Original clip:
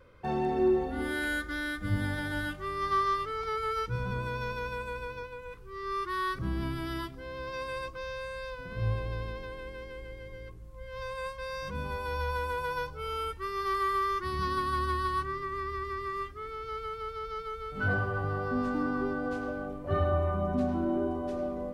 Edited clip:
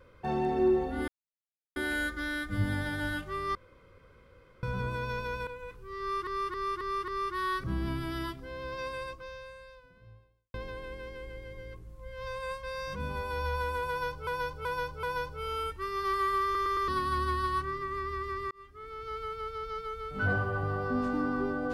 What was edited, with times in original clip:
1.08 s: insert silence 0.68 s
2.87–3.95 s: room tone
4.79–5.30 s: delete
5.83–6.10 s: loop, 5 plays
7.58–9.29 s: fade out quadratic
12.64–13.02 s: loop, 4 plays
14.05 s: stutter in place 0.11 s, 4 plays
16.12–16.98 s: fade in equal-power

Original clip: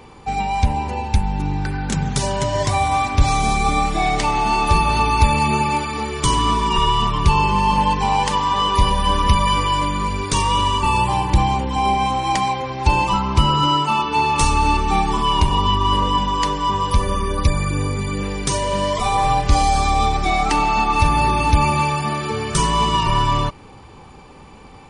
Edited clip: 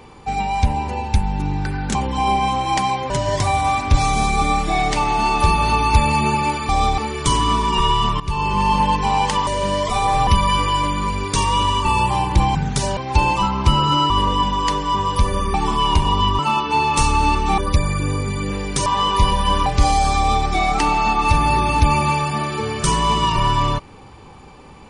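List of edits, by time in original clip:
1.95–2.37 s: swap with 11.53–12.68 s
7.18–7.61 s: fade in, from -15 dB
8.45–9.25 s: swap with 18.57–19.37 s
13.81–15.00 s: swap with 15.85–17.29 s
19.88–20.17 s: copy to 5.96 s

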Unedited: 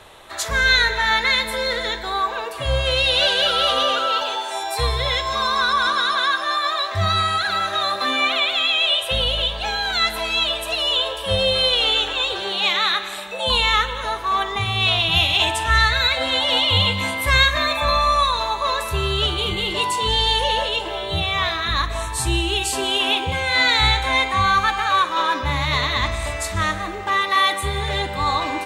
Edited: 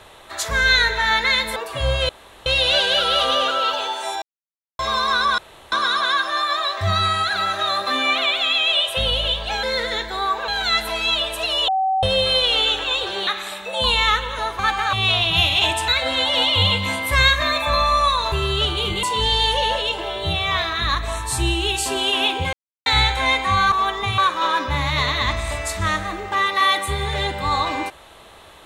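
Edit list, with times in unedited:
1.56–2.41 s: move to 9.77 s
2.94 s: insert room tone 0.37 s
4.70–5.27 s: mute
5.86 s: insert room tone 0.34 s
10.97–11.32 s: bleep 764 Hz -16.5 dBFS
12.56–12.93 s: delete
14.25–14.71 s: swap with 24.59–24.93 s
15.66–16.03 s: delete
18.47–18.93 s: delete
19.64–19.90 s: delete
23.40–23.73 s: mute

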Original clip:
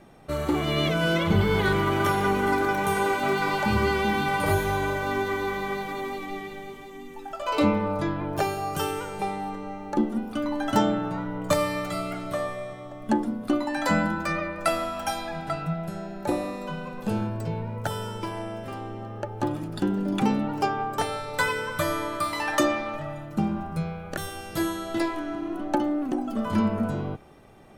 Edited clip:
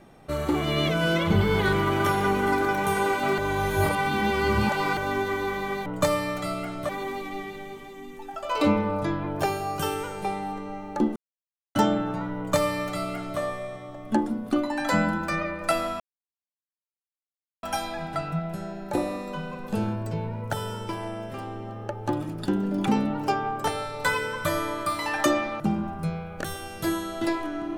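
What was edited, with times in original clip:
3.38–4.97 s: reverse
10.13–10.72 s: mute
11.34–12.37 s: copy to 5.86 s
14.97 s: insert silence 1.63 s
22.94–23.33 s: delete

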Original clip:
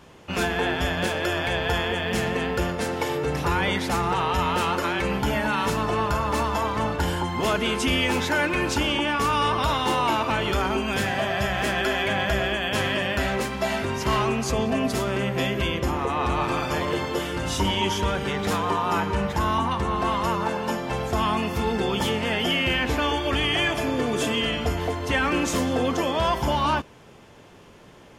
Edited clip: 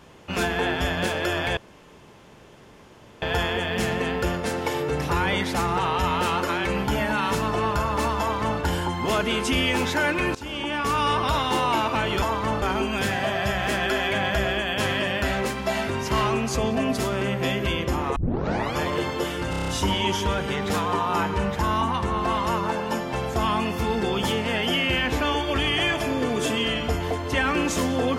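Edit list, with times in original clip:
1.57 s: insert room tone 1.65 s
6.55–6.95 s: copy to 10.57 s
8.70–9.50 s: fade in equal-power, from -20 dB
16.11 s: tape start 0.61 s
17.45 s: stutter 0.03 s, 7 plays

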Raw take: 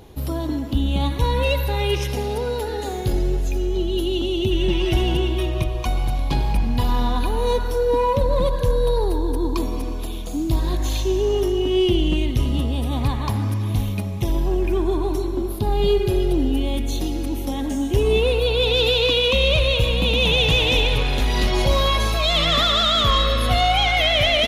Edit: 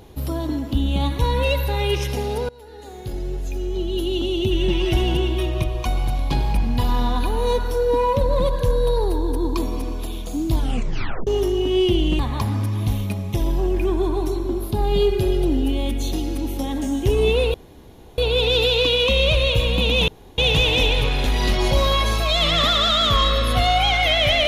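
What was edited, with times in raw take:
2.49–4.24 s: fade in, from -23.5 dB
10.54 s: tape stop 0.73 s
12.19–13.07 s: delete
18.42 s: insert room tone 0.64 s
20.32 s: insert room tone 0.30 s

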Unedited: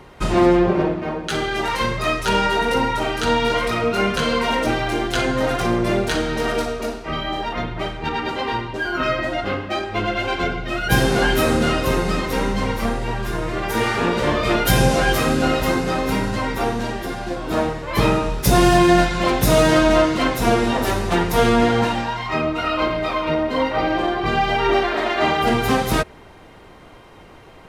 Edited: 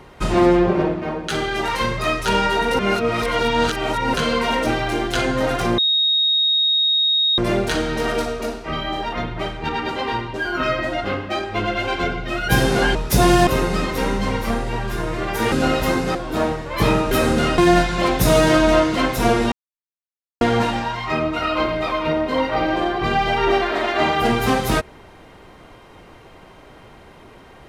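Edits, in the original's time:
2.79–4.14 s: reverse
5.78 s: add tone 3.75 kHz -14.5 dBFS 1.60 s
11.35–11.82 s: swap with 18.28–18.80 s
13.87–15.32 s: delete
15.95–17.32 s: delete
20.74–21.63 s: mute

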